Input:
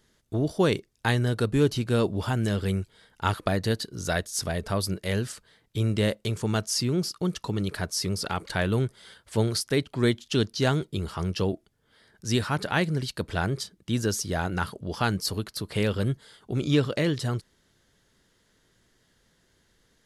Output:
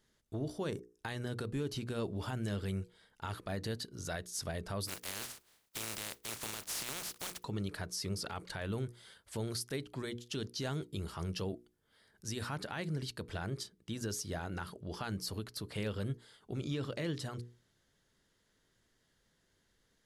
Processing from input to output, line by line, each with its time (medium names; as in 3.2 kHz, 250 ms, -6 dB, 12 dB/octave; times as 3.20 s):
0.70–0.98 s: time-frequency box 1.9–5.1 kHz -13 dB
4.87–7.42 s: spectral contrast reduction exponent 0.21
8.78–12.49 s: treble shelf 9.7 kHz +7.5 dB
whole clip: peak limiter -20 dBFS; hum notches 60/120/180/240/300/360/420/480 Hz; trim -8.5 dB